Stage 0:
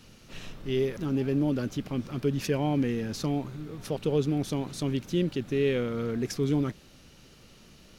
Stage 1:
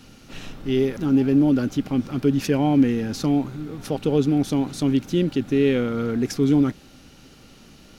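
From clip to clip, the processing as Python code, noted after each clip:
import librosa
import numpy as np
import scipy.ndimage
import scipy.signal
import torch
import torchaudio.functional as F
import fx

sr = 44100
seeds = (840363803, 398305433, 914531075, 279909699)

y = fx.small_body(x, sr, hz=(270.0, 790.0, 1400.0), ring_ms=45, db=7)
y = F.gain(torch.from_numpy(y), 4.5).numpy()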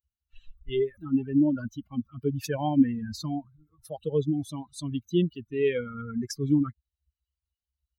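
y = fx.bin_expand(x, sr, power=3.0)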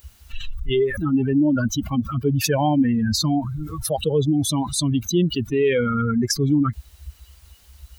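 y = fx.env_flatten(x, sr, amount_pct=70)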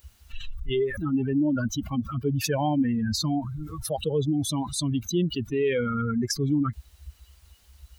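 y = fx.high_shelf(x, sr, hz=12000.0, db=-3.5)
y = F.gain(torch.from_numpy(y), -5.5).numpy()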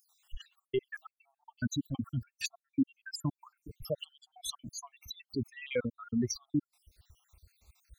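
y = fx.spec_dropout(x, sr, seeds[0], share_pct=73)
y = F.gain(torch.from_numpy(y), -3.5).numpy()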